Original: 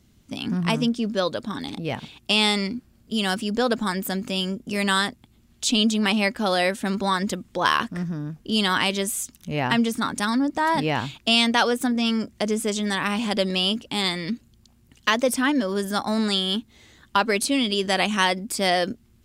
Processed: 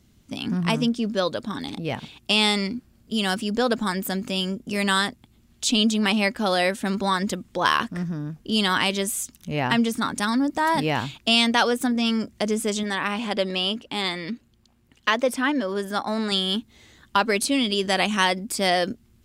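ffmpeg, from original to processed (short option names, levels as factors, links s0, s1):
-filter_complex "[0:a]asettb=1/sr,asplit=3[s0][s1][s2];[s0]atrim=end=10.384[s3];[s1]atrim=start=10.38:end=11.04,asetpts=PTS-STARTPTS,afade=t=in:d=0.004:c=qsin,afade=t=out:st=0.656:d=0.004:c=qsin,highshelf=f=11000:g=9.5[s4];[s2]atrim=start=11.036[s5];[s3][s4]acrossfade=d=0.004:c1=hsin:c2=qsin[s6];[s6][s5]acrossfade=d=0.004:c1=qsin:c2=hsin,asettb=1/sr,asplit=3[s7][s8][s9];[s7]atrim=end=12.834[s10];[s8]atrim=start=12.83:end=16.32,asetpts=PTS-STARTPTS,afade=t=in:d=0.004:c=qsin,afade=t=out:st=3.486:d=0.004:c=qsin,bass=f=250:g=-6,treble=f=4000:g=-7[s11];[s9]atrim=start=16.316[s12];[s10][s11]acrossfade=d=0.004:c1=hsin:c2=qsin[s13];[s13][s12]acrossfade=d=0.004:c1=qsin:c2=hsin"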